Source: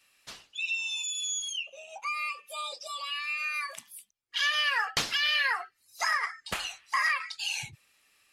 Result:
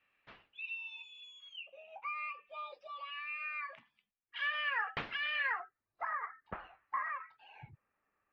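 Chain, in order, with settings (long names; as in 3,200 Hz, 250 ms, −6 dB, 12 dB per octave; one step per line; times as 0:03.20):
low-pass filter 2,500 Hz 24 dB per octave, from 0:05.60 1,500 Hz
level −6 dB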